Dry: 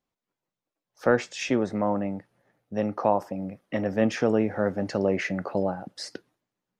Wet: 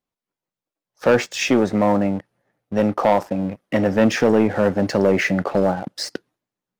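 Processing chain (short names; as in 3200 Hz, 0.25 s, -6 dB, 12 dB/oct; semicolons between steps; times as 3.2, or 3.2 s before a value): sample leveller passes 2; gain +2 dB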